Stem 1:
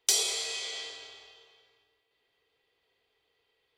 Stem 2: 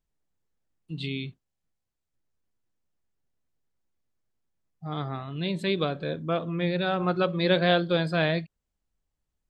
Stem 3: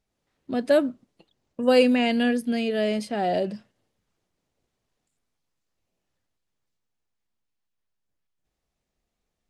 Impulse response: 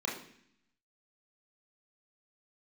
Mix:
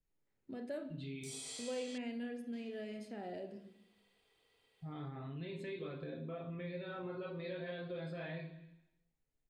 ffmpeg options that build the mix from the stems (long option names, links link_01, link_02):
-filter_complex "[0:a]acrossover=split=210[link_01][link_02];[link_02]acompressor=threshold=-35dB:ratio=3[link_03];[link_01][link_03]amix=inputs=2:normalize=0,equalizer=frequency=8700:width=3.2:gain=11,acompressor=threshold=-42dB:ratio=1.5,adelay=1150,volume=0.5dB,asplit=3[link_04][link_05][link_06];[link_04]atrim=end=1.98,asetpts=PTS-STARTPTS,afade=type=out:start_time=1.976:duration=0.004:curve=hsin[link_07];[link_05]atrim=start=1.98:end=2.53,asetpts=PTS-STARTPTS,volume=0[link_08];[link_06]atrim=start=2.53,asetpts=PTS-STARTPTS,afade=type=in:duration=0.004:curve=hsin[link_09];[link_07][link_08][link_09]concat=n=3:v=0:a=1[link_10];[1:a]aecho=1:1:7.5:0.55,acompressor=threshold=-25dB:ratio=2,volume=-8.5dB,asplit=2[link_11][link_12];[link_12]volume=-7dB[link_13];[2:a]volume=-14.5dB,asplit=2[link_14][link_15];[link_15]volume=-8.5dB[link_16];[link_10][link_11]amix=inputs=2:normalize=0,alimiter=level_in=8dB:limit=-24dB:level=0:latency=1:release=99,volume=-8dB,volume=0dB[link_17];[3:a]atrim=start_sample=2205[link_18];[link_13][link_16]amix=inputs=2:normalize=0[link_19];[link_19][link_18]afir=irnorm=-1:irlink=0[link_20];[link_14][link_17][link_20]amix=inputs=3:normalize=0,acompressor=threshold=-47dB:ratio=2"